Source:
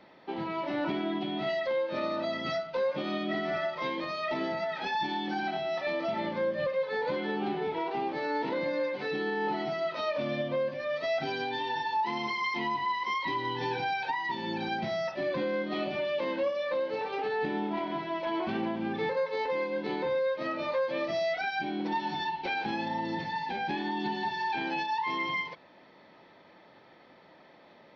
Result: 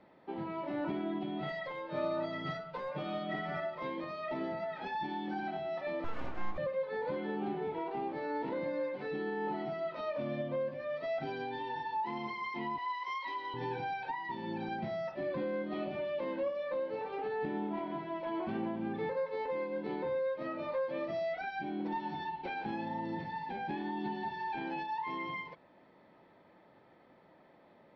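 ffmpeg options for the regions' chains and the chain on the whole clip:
ffmpeg -i in.wav -filter_complex "[0:a]asettb=1/sr,asplit=3[link_01][link_02][link_03];[link_01]atrim=end=1.424[link_04];[link_02]atrim=start=1.42:end=3.6,asetpts=PTS-STARTPTS,afade=type=in:duration=0.004:curve=qsin,afade=type=out:start_time=2.176:duration=0.004:curve=qsin,asoftclip=type=hard:threshold=-24dB,bandreject=frequency=290:width=6.2,aecho=1:1:6.7:0.91,atrim=end_sample=96138[link_05];[link_03]atrim=start=3.596[link_06];[link_04][link_05]acrossfade=duration=0.004:curve1=hsin:curve2=qsin[link_07];[link_07][link_06]acrossfade=duration=0.004:curve1=qsin:curve2=hsin,asettb=1/sr,asplit=3[link_08][link_09][link_10];[link_08]atrim=end=6.044[link_11];[link_09]atrim=start=6.04:end=6.58,asetpts=PTS-STARTPTS,afade=type=in:duration=0.004:curve=qsin,afade=type=out:start_time=0.536:duration=0.004:curve=qsin,lowpass=3500,aeval=exprs='abs(val(0))':channel_layout=same[link_12];[link_10]atrim=start=6.576[link_13];[link_11][link_12]acrossfade=duration=0.004:curve1=hsin:curve2=qsin[link_14];[link_14][link_13]acrossfade=duration=0.004:curve1=qsin:curve2=hsin,asettb=1/sr,asplit=3[link_15][link_16][link_17];[link_15]atrim=end=12.784[link_18];[link_16]atrim=start=12.78:end=13.54,asetpts=PTS-STARTPTS,afade=type=in:duration=0.004:curve=qsin,afade=type=out:start_time=0.756:duration=0.004:curve=qsin,highpass=620,aemphasis=mode=production:type=50kf[link_19];[link_17]atrim=start=13.536[link_20];[link_18][link_19]acrossfade=duration=0.004:curve1=hsin:curve2=qsin[link_21];[link_21][link_20]acrossfade=duration=0.004:curve1=qsin:curve2=hsin,lowpass=frequency=1400:poles=1,lowshelf=frequency=140:gain=4,volume=-4.5dB" out.wav

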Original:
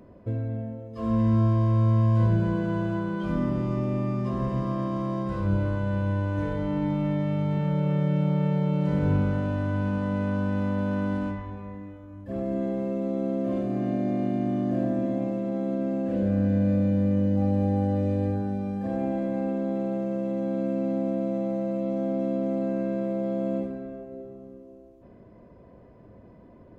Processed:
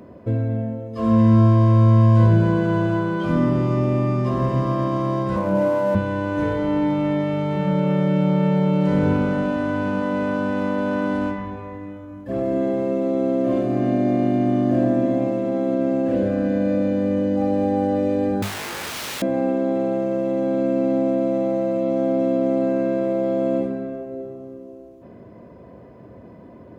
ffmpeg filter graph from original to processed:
ffmpeg -i in.wav -filter_complex "[0:a]asettb=1/sr,asplit=3[link_01][link_02][link_03];[link_01]atrim=end=5.364[link_04];[link_02]atrim=start=5.36:end=5.95,asetpts=PTS-STARTPTS,afade=type=in:duration=0.004:curve=qsin,afade=type=out:start_time=0.586:duration=0.004:curve=qsin,highpass=frequency=120:width=0.5412,highpass=frequency=120:width=1.3066,equalizer=frequency=140:width_type=q:width=4:gain=-8,equalizer=frequency=220:width_type=q:width=4:gain=6,equalizer=frequency=390:width_type=q:width=4:gain=-5,equalizer=frequency=610:width_type=q:width=4:gain=9,equalizer=frequency=890:width_type=q:width=4:gain=7,equalizer=frequency=1400:width_type=q:width=4:gain=-4,lowpass=frequency=2600:width=0.5412,lowpass=frequency=2600:width=1.3066,aeval=exprs='sgn(val(0))*max(abs(val(0))-0.00299,0)':channel_layout=same[link_05];[link_03]atrim=start=5.946[link_06];[link_04][link_05]acrossfade=duration=0.004:curve1=hsin:curve2=qsin[link_07];[link_07][link_06]acrossfade=duration=0.004:curve1=qsin:curve2=hsin,asettb=1/sr,asplit=3[link_08][link_09][link_10];[link_08]atrim=end=18.424[link_11];[link_09]atrim=start=18.42:end=19.22,asetpts=PTS-STARTPTS,afade=type=in:duration=0.004:curve=qsin,afade=type=out:start_time=0.796:duration=0.004:curve=qsin,highpass=frequency=150:width=0.5412,highpass=frequency=150:width=1.3066,aeval=exprs='(mod(50.1*val(0)+1,2)-1)/50.1':channel_layout=same[link_12];[link_10]atrim=start=19.216[link_13];[link_11][link_12]acrossfade=duration=0.004:curve1=hsin:curve2=qsin[link_14];[link_14][link_13]acrossfade=duration=0.004:curve1=qsin:curve2=hsin,highpass=80,bandreject=frequency=50:width_type=h:width=6,bandreject=frequency=100:width_type=h:width=6,bandreject=frequency=150:width_type=h:width=6,bandreject=frequency=200:width_type=h:width=6,volume=8.5dB" out.wav

